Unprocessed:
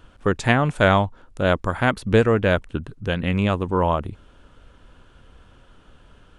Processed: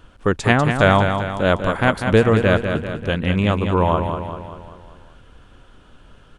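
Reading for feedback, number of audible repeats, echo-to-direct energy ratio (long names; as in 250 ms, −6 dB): 53%, 6, −5.5 dB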